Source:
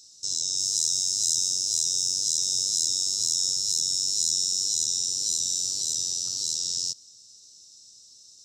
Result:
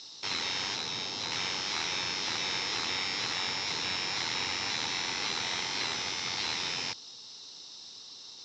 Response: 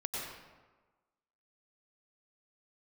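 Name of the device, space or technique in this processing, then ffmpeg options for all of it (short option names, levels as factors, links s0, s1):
overdrive pedal into a guitar cabinet: -filter_complex "[0:a]asplit=3[s0][s1][s2];[s0]afade=t=out:st=0.74:d=0.02[s3];[s1]lowpass=f=2100:p=1,afade=t=in:st=0.74:d=0.02,afade=t=out:st=1.31:d=0.02[s4];[s2]afade=t=in:st=1.31:d=0.02[s5];[s3][s4][s5]amix=inputs=3:normalize=0,asplit=2[s6][s7];[s7]highpass=f=720:p=1,volume=25.1,asoftclip=type=tanh:threshold=0.299[s8];[s6][s8]amix=inputs=2:normalize=0,lowpass=f=4200:p=1,volume=0.501,highpass=93,equalizer=f=100:t=q:w=4:g=3,equalizer=f=600:t=q:w=4:g=-7,equalizer=f=890:t=q:w=4:g=8,equalizer=f=2100:t=q:w=4:g=5,lowpass=f=3600:w=0.5412,lowpass=f=3600:w=1.3066"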